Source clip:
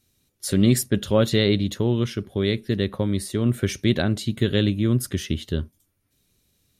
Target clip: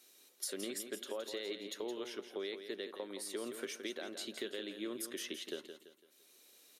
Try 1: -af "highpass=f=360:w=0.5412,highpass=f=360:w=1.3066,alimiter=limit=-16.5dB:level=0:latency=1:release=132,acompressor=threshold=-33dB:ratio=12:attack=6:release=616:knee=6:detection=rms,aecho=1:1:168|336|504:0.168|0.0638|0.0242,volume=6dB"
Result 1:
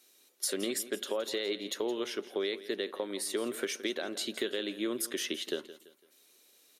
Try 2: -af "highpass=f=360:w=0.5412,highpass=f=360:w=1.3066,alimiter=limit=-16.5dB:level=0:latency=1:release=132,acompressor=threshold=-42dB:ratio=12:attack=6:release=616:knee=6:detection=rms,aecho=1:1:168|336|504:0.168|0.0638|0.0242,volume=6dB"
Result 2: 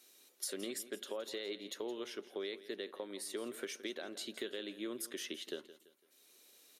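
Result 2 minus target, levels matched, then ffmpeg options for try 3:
echo-to-direct -6.5 dB
-af "highpass=f=360:w=0.5412,highpass=f=360:w=1.3066,alimiter=limit=-16.5dB:level=0:latency=1:release=132,acompressor=threshold=-42dB:ratio=12:attack=6:release=616:knee=6:detection=rms,aecho=1:1:168|336|504|672:0.355|0.135|0.0512|0.0195,volume=6dB"

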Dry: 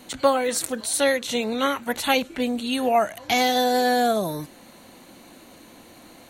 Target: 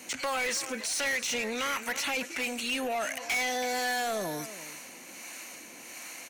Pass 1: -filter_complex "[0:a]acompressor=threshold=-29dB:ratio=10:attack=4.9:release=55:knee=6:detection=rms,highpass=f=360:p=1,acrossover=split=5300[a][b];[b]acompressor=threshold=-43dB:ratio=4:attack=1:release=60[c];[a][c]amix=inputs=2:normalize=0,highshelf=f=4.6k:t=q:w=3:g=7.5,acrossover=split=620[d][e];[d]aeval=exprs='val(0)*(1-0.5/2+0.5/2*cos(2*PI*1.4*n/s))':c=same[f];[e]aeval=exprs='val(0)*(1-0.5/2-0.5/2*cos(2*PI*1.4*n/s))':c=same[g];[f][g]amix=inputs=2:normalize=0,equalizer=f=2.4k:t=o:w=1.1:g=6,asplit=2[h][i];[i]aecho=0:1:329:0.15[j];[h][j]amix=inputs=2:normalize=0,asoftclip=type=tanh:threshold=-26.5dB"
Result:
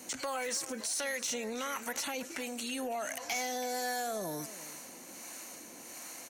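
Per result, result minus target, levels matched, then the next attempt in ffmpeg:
compressor: peak gain reduction +6.5 dB; 2000 Hz band -3.0 dB
-filter_complex "[0:a]acompressor=threshold=-22dB:ratio=10:attack=4.9:release=55:knee=6:detection=rms,highpass=f=360:p=1,acrossover=split=5300[a][b];[b]acompressor=threshold=-43dB:ratio=4:attack=1:release=60[c];[a][c]amix=inputs=2:normalize=0,highshelf=f=4.6k:t=q:w=3:g=7.5,acrossover=split=620[d][e];[d]aeval=exprs='val(0)*(1-0.5/2+0.5/2*cos(2*PI*1.4*n/s))':c=same[f];[e]aeval=exprs='val(0)*(1-0.5/2-0.5/2*cos(2*PI*1.4*n/s))':c=same[g];[f][g]amix=inputs=2:normalize=0,equalizer=f=2.4k:t=o:w=1.1:g=6,asplit=2[h][i];[i]aecho=0:1:329:0.15[j];[h][j]amix=inputs=2:normalize=0,asoftclip=type=tanh:threshold=-26.5dB"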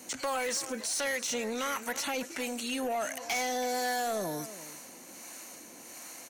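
2000 Hz band -3.0 dB
-filter_complex "[0:a]acompressor=threshold=-22dB:ratio=10:attack=4.9:release=55:knee=6:detection=rms,highpass=f=360:p=1,acrossover=split=5300[a][b];[b]acompressor=threshold=-43dB:ratio=4:attack=1:release=60[c];[a][c]amix=inputs=2:normalize=0,highshelf=f=4.6k:t=q:w=3:g=7.5,acrossover=split=620[d][e];[d]aeval=exprs='val(0)*(1-0.5/2+0.5/2*cos(2*PI*1.4*n/s))':c=same[f];[e]aeval=exprs='val(0)*(1-0.5/2-0.5/2*cos(2*PI*1.4*n/s))':c=same[g];[f][g]amix=inputs=2:normalize=0,equalizer=f=2.4k:t=o:w=1.1:g=16,asplit=2[h][i];[i]aecho=0:1:329:0.15[j];[h][j]amix=inputs=2:normalize=0,asoftclip=type=tanh:threshold=-26.5dB"

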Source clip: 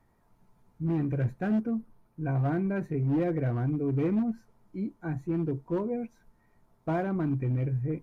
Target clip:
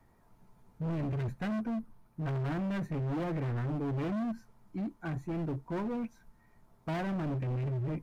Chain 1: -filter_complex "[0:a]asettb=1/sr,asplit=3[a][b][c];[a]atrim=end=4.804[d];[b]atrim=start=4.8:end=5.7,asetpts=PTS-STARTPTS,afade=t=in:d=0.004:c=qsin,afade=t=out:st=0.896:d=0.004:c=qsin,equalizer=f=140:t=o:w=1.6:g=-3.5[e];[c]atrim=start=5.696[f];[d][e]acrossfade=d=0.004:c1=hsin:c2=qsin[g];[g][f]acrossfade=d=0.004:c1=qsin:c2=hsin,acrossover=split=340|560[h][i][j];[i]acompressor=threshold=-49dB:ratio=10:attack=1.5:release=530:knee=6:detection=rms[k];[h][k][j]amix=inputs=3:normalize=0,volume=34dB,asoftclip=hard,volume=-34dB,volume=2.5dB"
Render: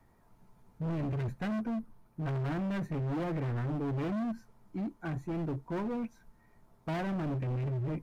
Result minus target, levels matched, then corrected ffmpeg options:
compressor: peak gain reduction -9 dB
-filter_complex "[0:a]asettb=1/sr,asplit=3[a][b][c];[a]atrim=end=4.804[d];[b]atrim=start=4.8:end=5.7,asetpts=PTS-STARTPTS,afade=t=in:d=0.004:c=qsin,afade=t=out:st=0.896:d=0.004:c=qsin,equalizer=f=140:t=o:w=1.6:g=-3.5[e];[c]atrim=start=5.696[f];[d][e]acrossfade=d=0.004:c1=hsin:c2=qsin[g];[g][f]acrossfade=d=0.004:c1=qsin:c2=hsin,acrossover=split=340|560[h][i][j];[i]acompressor=threshold=-59dB:ratio=10:attack=1.5:release=530:knee=6:detection=rms[k];[h][k][j]amix=inputs=3:normalize=0,volume=34dB,asoftclip=hard,volume=-34dB,volume=2.5dB"

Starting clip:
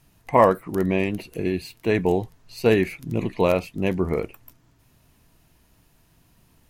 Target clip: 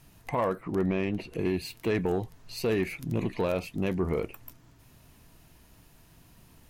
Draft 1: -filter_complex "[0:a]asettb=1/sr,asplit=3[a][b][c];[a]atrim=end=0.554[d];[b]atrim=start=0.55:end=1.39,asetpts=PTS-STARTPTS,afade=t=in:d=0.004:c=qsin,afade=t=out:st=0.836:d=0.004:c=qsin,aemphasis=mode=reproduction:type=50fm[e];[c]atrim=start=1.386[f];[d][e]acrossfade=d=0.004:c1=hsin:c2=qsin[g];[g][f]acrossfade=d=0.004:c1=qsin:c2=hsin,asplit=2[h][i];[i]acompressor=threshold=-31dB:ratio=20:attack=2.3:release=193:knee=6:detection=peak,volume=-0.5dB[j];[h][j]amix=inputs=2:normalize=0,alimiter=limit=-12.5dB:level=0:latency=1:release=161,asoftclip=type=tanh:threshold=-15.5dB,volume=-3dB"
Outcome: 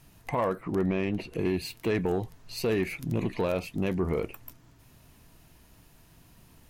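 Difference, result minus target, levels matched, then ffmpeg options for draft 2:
compressor: peak gain reduction -6.5 dB
-filter_complex "[0:a]asettb=1/sr,asplit=3[a][b][c];[a]atrim=end=0.554[d];[b]atrim=start=0.55:end=1.39,asetpts=PTS-STARTPTS,afade=t=in:d=0.004:c=qsin,afade=t=out:st=0.836:d=0.004:c=qsin,aemphasis=mode=reproduction:type=50fm[e];[c]atrim=start=1.386[f];[d][e]acrossfade=d=0.004:c1=hsin:c2=qsin[g];[g][f]acrossfade=d=0.004:c1=qsin:c2=hsin,asplit=2[h][i];[i]acompressor=threshold=-38dB:ratio=20:attack=2.3:release=193:knee=6:detection=peak,volume=-0.5dB[j];[h][j]amix=inputs=2:normalize=0,alimiter=limit=-12.5dB:level=0:latency=1:release=161,asoftclip=type=tanh:threshold=-15.5dB,volume=-3dB"

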